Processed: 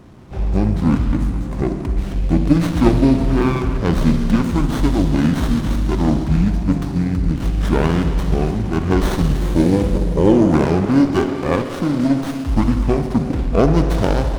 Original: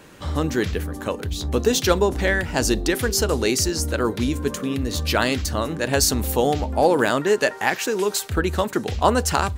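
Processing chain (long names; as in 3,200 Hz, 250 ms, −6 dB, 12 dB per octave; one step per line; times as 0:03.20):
change of speed 0.666×
low-shelf EQ 390 Hz +9 dB
notch filter 2,700 Hz, Q 20
convolution reverb RT60 2.8 s, pre-delay 46 ms, DRR 5.5 dB
windowed peak hold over 17 samples
level −1.5 dB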